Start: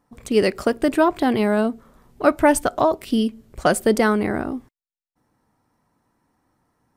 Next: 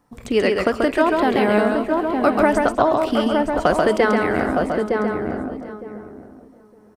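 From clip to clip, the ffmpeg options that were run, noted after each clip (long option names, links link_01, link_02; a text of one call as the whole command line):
ffmpeg -i in.wav -filter_complex "[0:a]asplit=2[link_01][link_02];[link_02]adelay=911,lowpass=frequency=990:poles=1,volume=-6dB,asplit=2[link_03][link_04];[link_04]adelay=911,lowpass=frequency=990:poles=1,volume=0.16,asplit=2[link_05][link_06];[link_06]adelay=911,lowpass=frequency=990:poles=1,volume=0.16[link_07];[link_03][link_05][link_07]amix=inputs=3:normalize=0[link_08];[link_01][link_08]amix=inputs=2:normalize=0,acrossover=split=520|3300|7200[link_09][link_10][link_11][link_12];[link_09]acompressor=threshold=-26dB:ratio=4[link_13];[link_10]acompressor=threshold=-21dB:ratio=4[link_14];[link_11]acompressor=threshold=-49dB:ratio=4[link_15];[link_12]acompressor=threshold=-59dB:ratio=4[link_16];[link_13][link_14][link_15][link_16]amix=inputs=4:normalize=0,asplit=2[link_17][link_18];[link_18]aecho=0:1:135|198|422|719|745:0.668|0.158|0.133|0.106|0.168[link_19];[link_17][link_19]amix=inputs=2:normalize=0,volume=4.5dB" out.wav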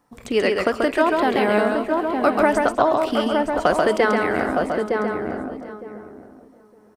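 ffmpeg -i in.wav -af "lowshelf=frequency=220:gain=-7" out.wav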